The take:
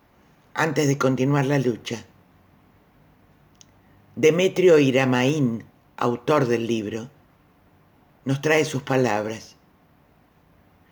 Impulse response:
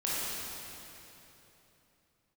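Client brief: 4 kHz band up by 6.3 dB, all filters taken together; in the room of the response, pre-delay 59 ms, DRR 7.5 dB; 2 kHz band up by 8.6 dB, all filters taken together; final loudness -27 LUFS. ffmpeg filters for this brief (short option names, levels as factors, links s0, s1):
-filter_complex "[0:a]equalizer=f=2000:t=o:g=9,equalizer=f=4000:t=o:g=4.5,asplit=2[s0][s1];[1:a]atrim=start_sample=2205,adelay=59[s2];[s1][s2]afir=irnorm=-1:irlink=0,volume=0.168[s3];[s0][s3]amix=inputs=2:normalize=0,volume=0.376"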